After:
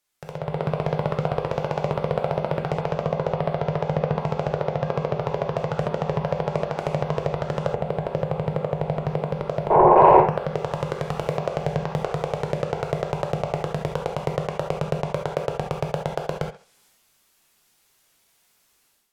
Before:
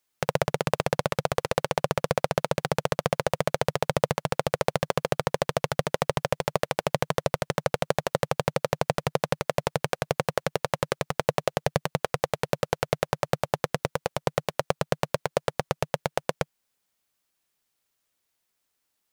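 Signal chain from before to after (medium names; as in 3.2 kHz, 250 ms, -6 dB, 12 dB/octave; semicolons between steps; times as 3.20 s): 9.70–10.21 s: painted sound noise 340–1100 Hz -21 dBFS; peak limiter -15 dBFS, peak gain reduction 11 dB; hard clipper -22 dBFS, distortion -12 dB; thinning echo 67 ms, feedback 29%, high-pass 210 Hz, level -18.5 dB; low-pass that closes with the level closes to 1.4 kHz, closed at -34 dBFS; 7.72–9.95 s: peaking EQ 4.8 kHz -10.5 dB 2.9 oct; transient shaper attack -3 dB, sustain +4 dB; level rider gain up to 14 dB; gated-style reverb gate 100 ms flat, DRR 2 dB; trim -1 dB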